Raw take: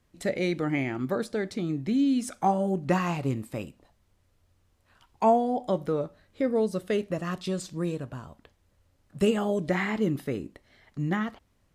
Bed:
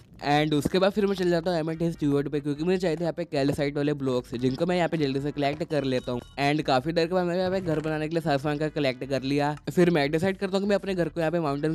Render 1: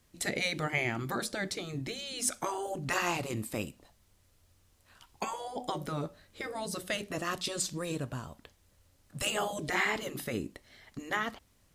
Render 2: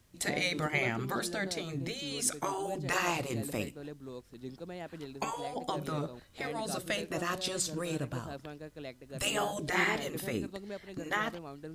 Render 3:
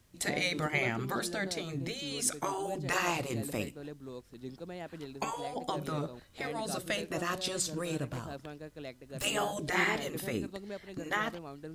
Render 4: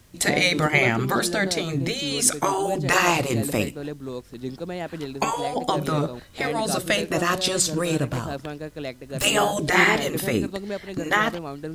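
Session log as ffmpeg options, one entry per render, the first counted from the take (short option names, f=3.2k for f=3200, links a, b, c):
-af "afftfilt=real='re*lt(hypot(re,im),0.224)':imag='im*lt(hypot(re,im),0.224)':win_size=1024:overlap=0.75,highshelf=f=3.3k:g=10"
-filter_complex "[1:a]volume=-18.5dB[a];[0:a][a]amix=inputs=2:normalize=0"
-filter_complex "[0:a]asettb=1/sr,asplit=3[a][b][c];[a]atrim=end=8.074[d];[b]atrim=start=8.07:end=9.24,asetpts=PTS-STARTPTS,afade=t=in:d=0.004:c=qsin,afade=t=out:st=1.166:d=0.004:c=qsin,aeval=exprs='0.0266*(abs(mod(val(0)/0.0266+3,4)-2)-1)':c=same[e];[c]atrim=start=9.236[f];[d][e]acrossfade=d=0.004:c1=hsin:c2=qsin[g];[g][f]acrossfade=d=0.004:c1=qsin:c2=hsin"
-af "volume=11.5dB"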